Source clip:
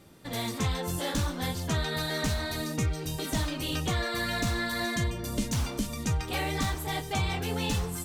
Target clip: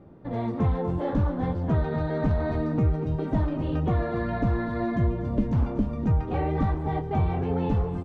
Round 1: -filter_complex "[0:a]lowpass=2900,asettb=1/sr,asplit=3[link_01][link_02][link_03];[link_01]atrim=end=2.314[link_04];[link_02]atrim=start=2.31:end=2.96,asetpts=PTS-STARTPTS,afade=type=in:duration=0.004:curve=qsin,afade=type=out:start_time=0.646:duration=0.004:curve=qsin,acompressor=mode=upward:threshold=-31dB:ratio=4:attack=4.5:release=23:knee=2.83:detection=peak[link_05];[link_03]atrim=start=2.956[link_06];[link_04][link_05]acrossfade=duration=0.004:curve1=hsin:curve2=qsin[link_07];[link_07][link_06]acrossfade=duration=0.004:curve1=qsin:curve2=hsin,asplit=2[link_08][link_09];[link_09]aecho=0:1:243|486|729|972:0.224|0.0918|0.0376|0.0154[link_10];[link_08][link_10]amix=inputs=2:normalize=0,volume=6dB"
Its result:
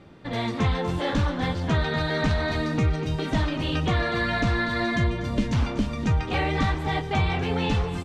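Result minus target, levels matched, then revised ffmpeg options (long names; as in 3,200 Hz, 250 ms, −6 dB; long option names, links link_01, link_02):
4,000 Hz band +18.5 dB
-filter_complex "[0:a]lowpass=850,asettb=1/sr,asplit=3[link_01][link_02][link_03];[link_01]atrim=end=2.314[link_04];[link_02]atrim=start=2.31:end=2.96,asetpts=PTS-STARTPTS,afade=type=in:duration=0.004:curve=qsin,afade=type=out:start_time=0.646:duration=0.004:curve=qsin,acompressor=mode=upward:threshold=-31dB:ratio=4:attack=4.5:release=23:knee=2.83:detection=peak[link_05];[link_03]atrim=start=2.956[link_06];[link_04][link_05]acrossfade=duration=0.004:curve1=hsin:curve2=qsin[link_07];[link_07][link_06]acrossfade=duration=0.004:curve1=qsin:curve2=hsin,asplit=2[link_08][link_09];[link_09]aecho=0:1:243|486|729|972:0.224|0.0918|0.0376|0.0154[link_10];[link_08][link_10]amix=inputs=2:normalize=0,volume=6dB"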